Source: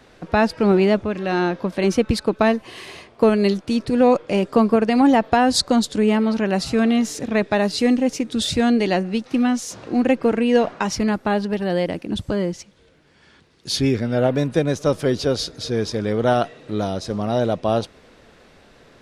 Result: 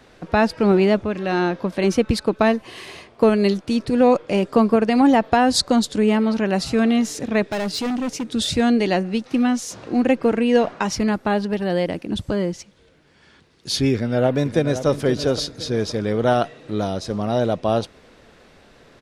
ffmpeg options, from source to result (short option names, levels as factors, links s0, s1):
-filter_complex "[0:a]asettb=1/sr,asplit=3[s0][s1][s2];[s0]atrim=end=7.444[s3];[s1]atrim=start=7.44:end=8.32,asetpts=PTS-STARTPTS,afade=t=in:d=0.004:c=qsin,afade=t=out:st=0.876:d=0.004:c=qsin,volume=11.2,asoftclip=hard,volume=0.0891[s4];[s2]atrim=start=8.316[s5];[s3][s4]acrossfade=d=0.004:c1=hsin:c2=qsin[s6];[s6][s5]acrossfade=d=0.004:c1=qsin:c2=hsin,asplit=2[s7][s8];[s8]afade=t=in:st=13.93:d=0.01,afade=t=out:st=14.87:d=0.01,aecho=0:1:520|1040|1560|2080:0.281838|0.112735|0.0450941|0.0180377[s9];[s7][s9]amix=inputs=2:normalize=0"